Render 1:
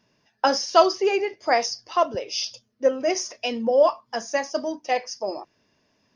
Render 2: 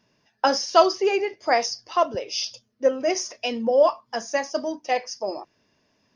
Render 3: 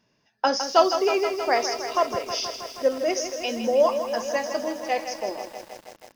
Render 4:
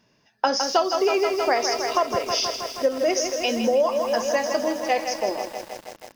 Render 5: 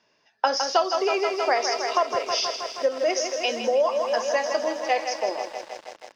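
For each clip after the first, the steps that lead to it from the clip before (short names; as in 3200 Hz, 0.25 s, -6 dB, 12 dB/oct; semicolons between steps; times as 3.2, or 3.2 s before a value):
nothing audible
lo-fi delay 0.159 s, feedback 80%, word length 7-bit, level -9 dB; gain -2 dB
compressor 6:1, threshold -22 dBFS, peak gain reduction 10.5 dB; gain +5 dB
three-band isolator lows -15 dB, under 370 Hz, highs -21 dB, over 7200 Hz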